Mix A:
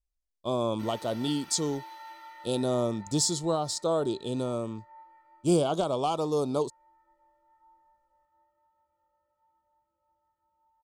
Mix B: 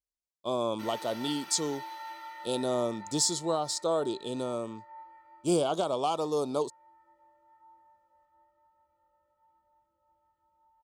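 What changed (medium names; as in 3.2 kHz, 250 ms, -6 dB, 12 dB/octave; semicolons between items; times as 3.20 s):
speech: add high-pass 310 Hz 6 dB/octave; background +3.5 dB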